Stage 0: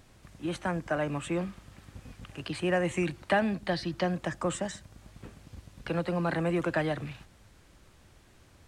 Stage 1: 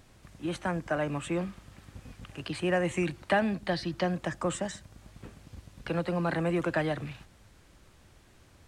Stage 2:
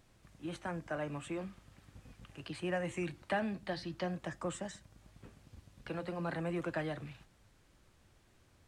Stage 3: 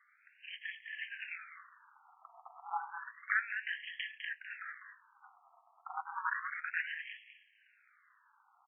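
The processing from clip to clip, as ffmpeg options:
ffmpeg -i in.wav -af anull out.wav
ffmpeg -i in.wav -af "flanger=delay=5.8:depth=3.2:regen=-76:speed=0.43:shape=sinusoidal,volume=-4dB" out.wav
ffmpeg -i in.wav -filter_complex "[0:a]asplit=2[link_01][link_02];[link_02]adelay=204.1,volume=-7dB,highshelf=frequency=4000:gain=-4.59[link_03];[link_01][link_03]amix=inputs=2:normalize=0,aeval=exprs='val(0)*sin(2*PI*110*n/s)':channel_layout=same,afftfilt=real='re*between(b*sr/1024,940*pow(2400/940,0.5+0.5*sin(2*PI*0.31*pts/sr))/1.41,940*pow(2400/940,0.5+0.5*sin(2*PI*0.31*pts/sr))*1.41)':imag='im*between(b*sr/1024,940*pow(2400/940,0.5+0.5*sin(2*PI*0.31*pts/sr))/1.41,940*pow(2400/940,0.5+0.5*sin(2*PI*0.31*pts/sr))*1.41)':win_size=1024:overlap=0.75,volume=12dB" out.wav

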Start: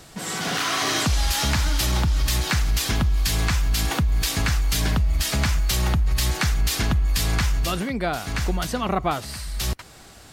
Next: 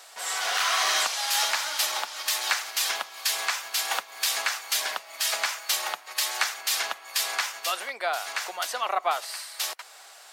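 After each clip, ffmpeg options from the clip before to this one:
ffmpeg -i in.wav -af "highpass=frequency=630:width=0.5412,highpass=frequency=630:width=1.3066" out.wav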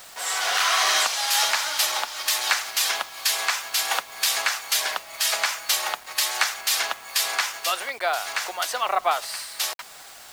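ffmpeg -i in.wav -af "acrusher=bits=7:mix=0:aa=0.000001,volume=3.5dB" out.wav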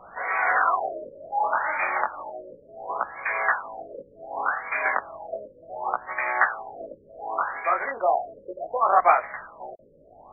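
ffmpeg -i in.wav -af "flanger=delay=16:depth=6.4:speed=0.32,afftfilt=real='re*lt(b*sr/1024,590*pow(2500/590,0.5+0.5*sin(2*PI*0.68*pts/sr)))':imag='im*lt(b*sr/1024,590*pow(2500/590,0.5+0.5*sin(2*PI*0.68*pts/sr)))':win_size=1024:overlap=0.75,volume=8dB" out.wav

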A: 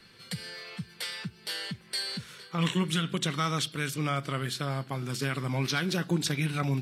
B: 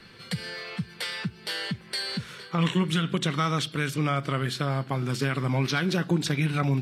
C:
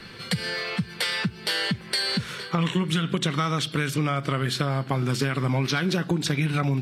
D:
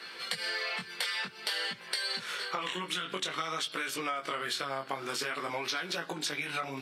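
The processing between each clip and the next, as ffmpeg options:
ffmpeg -i in.wav -af "acompressor=threshold=-34dB:ratio=1.5,highshelf=frequency=4500:gain=-9,volume=7.5dB" out.wav
ffmpeg -i in.wav -af "acompressor=threshold=-29dB:ratio=4,volume=7.5dB" out.wav
ffmpeg -i in.wav -af "flanger=delay=17:depth=5.4:speed=0.52,highpass=550,acompressor=threshold=-33dB:ratio=6,volume=2.5dB" out.wav

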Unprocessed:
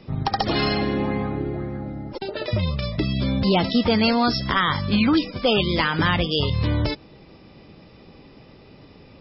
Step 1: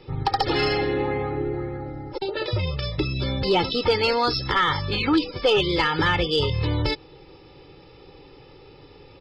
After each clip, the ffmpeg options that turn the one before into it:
ffmpeg -i in.wav -af "equalizer=frequency=75:width=1.8:gain=-5.5,aecho=1:1:2.3:0.85,acontrast=52,volume=-7.5dB" out.wav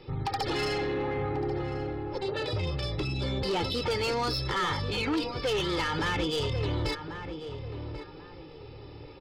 ffmpeg -i in.wav -filter_complex "[0:a]asplit=2[link_01][link_02];[link_02]alimiter=limit=-22dB:level=0:latency=1:release=16,volume=-1dB[link_03];[link_01][link_03]amix=inputs=2:normalize=0,asoftclip=type=tanh:threshold=-17dB,asplit=2[link_04][link_05];[link_05]adelay=1090,lowpass=frequency=1400:poles=1,volume=-8dB,asplit=2[link_06][link_07];[link_07]adelay=1090,lowpass=frequency=1400:poles=1,volume=0.34,asplit=2[link_08][link_09];[link_09]adelay=1090,lowpass=frequency=1400:poles=1,volume=0.34,asplit=2[link_10][link_11];[link_11]adelay=1090,lowpass=frequency=1400:poles=1,volume=0.34[link_12];[link_04][link_06][link_08][link_10][link_12]amix=inputs=5:normalize=0,volume=-7.5dB" out.wav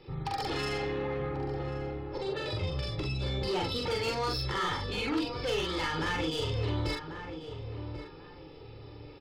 ffmpeg -i in.wav -filter_complex "[0:a]asplit=2[link_01][link_02];[link_02]adelay=44,volume=-2dB[link_03];[link_01][link_03]amix=inputs=2:normalize=0,volume=-4.5dB" out.wav

